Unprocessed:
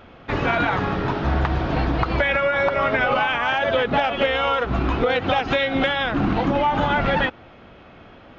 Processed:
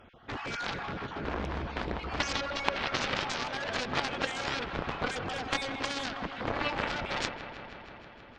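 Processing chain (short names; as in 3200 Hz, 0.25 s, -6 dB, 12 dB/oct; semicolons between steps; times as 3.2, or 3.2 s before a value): random spectral dropouts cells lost 25%; added harmonics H 3 -7 dB, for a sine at -8 dBFS; on a send: dark delay 0.159 s, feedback 77%, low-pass 2900 Hz, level -10.5 dB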